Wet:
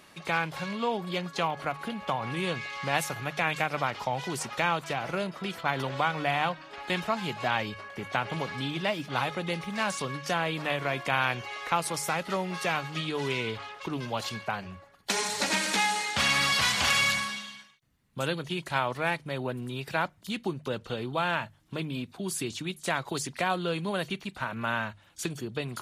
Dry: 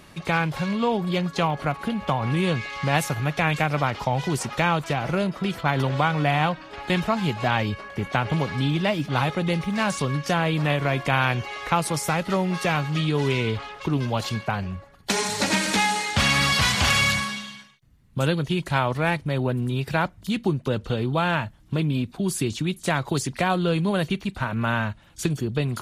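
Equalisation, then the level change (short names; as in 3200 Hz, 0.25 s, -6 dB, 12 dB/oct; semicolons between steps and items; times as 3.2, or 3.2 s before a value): low shelf 76 Hz -8.5 dB; low shelf 340 Hz -7.5 dB; notches 50/100/150 Hz; -3.5 dB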